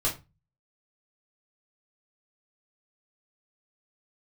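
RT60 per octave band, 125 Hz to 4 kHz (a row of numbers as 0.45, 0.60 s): 0.55, 0.35, 0.25, 0.25, 0.25, 0.20 s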